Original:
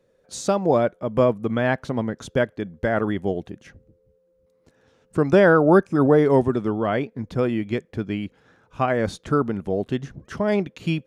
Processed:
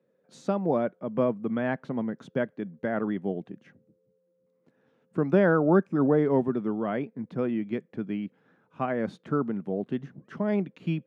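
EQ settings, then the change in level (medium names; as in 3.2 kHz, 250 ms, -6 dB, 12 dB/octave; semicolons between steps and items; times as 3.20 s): high-pass 170 Hz 24 dB/octave; tone controls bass +9 dB, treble -15 dB; -8.0 dB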